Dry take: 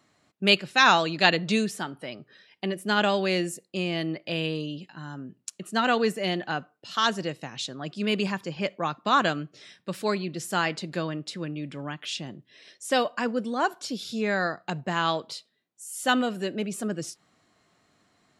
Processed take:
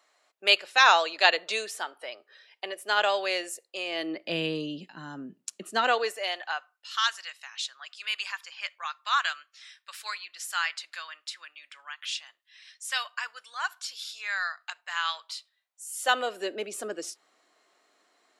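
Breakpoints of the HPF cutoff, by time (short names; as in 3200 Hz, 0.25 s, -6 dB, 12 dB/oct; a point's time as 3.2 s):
HPF 24 dB/oct
3.85 s 500 Hz
4.35 s 180 Hz
5.49 s 180 Hz
5.98 s 460 Hz
6.96 s 1200 Hz
15.13 s 1200 Hz
16.47 s 350 Hz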